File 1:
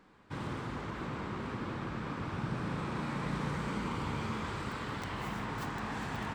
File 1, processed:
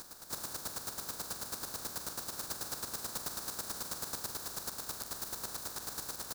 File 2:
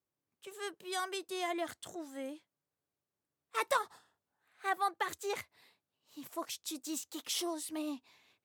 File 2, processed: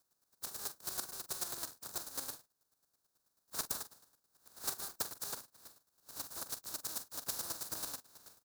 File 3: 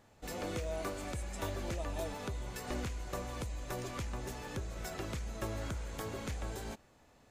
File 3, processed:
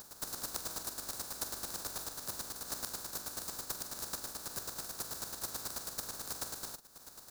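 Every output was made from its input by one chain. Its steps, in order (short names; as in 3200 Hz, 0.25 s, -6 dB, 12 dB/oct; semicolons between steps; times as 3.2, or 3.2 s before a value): spectral contrast lowered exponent 0.1; band shelf 2500 Hz -12.5 dB 1 oct; compressor 3:1, threshold -57 dBFS; chopper 9.2 Hz, depth 65%, duty 20%; doubler 44 ms -12 dB; gain +17.5 dB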